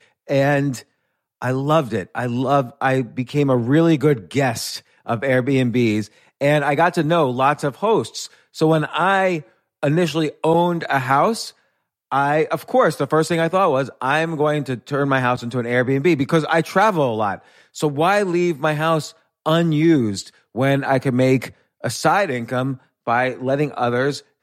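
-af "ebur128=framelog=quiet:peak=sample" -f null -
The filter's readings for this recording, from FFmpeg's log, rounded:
Integrated loudness:
  I:         -19.2 LUFS
  Threshold: -29.5 LUFS
Loudness range:
  LRA:         1.4 LU
  Threshold: -39.4 LUFS
  LRA low:   -20.2 LUFS
  LRA high:  -18.8 LUFS
Sample peak:
  Peak:       -3.1 dBFS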